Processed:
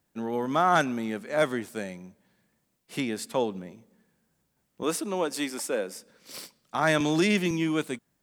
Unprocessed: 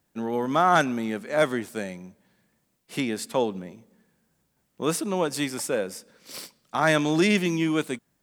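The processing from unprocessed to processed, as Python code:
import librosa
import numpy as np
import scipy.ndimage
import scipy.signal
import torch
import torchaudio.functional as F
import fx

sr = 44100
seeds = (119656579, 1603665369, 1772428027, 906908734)

y = fx.highpass(x, sr, hz=200.0, slope=24, at=(4.83, 5.96))
y = fx.band_squash(y, sr, depth_pct=40, at=(7.0, 7.51))
y = F.gain(torch.from_numpy(y), -2.5).numpy()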